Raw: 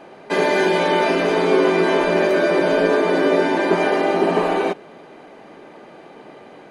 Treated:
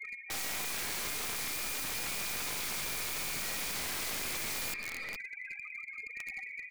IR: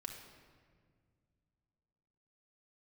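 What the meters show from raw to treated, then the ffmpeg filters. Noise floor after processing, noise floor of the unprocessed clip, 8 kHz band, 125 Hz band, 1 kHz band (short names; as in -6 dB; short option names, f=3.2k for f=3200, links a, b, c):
-47 dBFS, -43 dBFS, n/a, -19.5 dB, -23.5 dB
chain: -af "afftfilt=real='re*pow(10,11/40*sin(2*PI*(1.6*log(max(b,1)*sr/1024/100)/log(2)-(-0.66)*(pts-256)/sr)))':imag='im*pow(10,11/40*sin(2*PI*(1.6*log(max(b,1)*sr/1024/100)/log(2)-(-0.66)*(pts-256)/sr)))':win_size=1024:overlap=0.75,aemphasis=mode=production:type=bsi,afftfilt=real='re*gte(hypot(re,im),0.0316)':imag='im*gte(hypot(re,im),0.0316)':win_size=1024:overlap=0.75,lowshelf=f=110:g=5,areverse,acompressor=threshold=-25dB:ratio=8,areverse,lowpass=f=2.4k:t=q:w=0.5098,lowpass=f=2.4k:t=q:w=0.6013,lowpass=f=2.4k:t=q:w=0.9,lowpass=f=2.4k:t=q:w=2.563,afreqshift=-2800,aeval=exprs='clip(val(0),-1,0.0112)':c=same,aecho=1:1:426:0.188,aeval=exprs='(mod(42.2*val(0)+1,2)-1)/42.2':c=same,volume=2dB"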